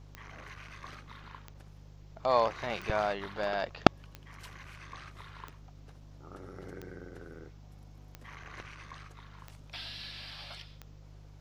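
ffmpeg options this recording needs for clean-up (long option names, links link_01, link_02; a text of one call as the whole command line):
ffmpeg -i in.wav -af "adeclick=threshold=4,bandreject=frequency=50.4:width_type=h:width=4,bandreject=frequency=100.8:width_type=h:width=4,bandreject=frequency=151.2:width_type=h:width=4" out.wav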